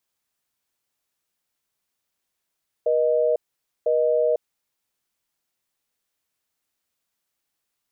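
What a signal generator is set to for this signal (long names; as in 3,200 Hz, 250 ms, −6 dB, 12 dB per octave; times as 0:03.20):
call progress tone busy tone, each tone −20 dBFS 1.65 s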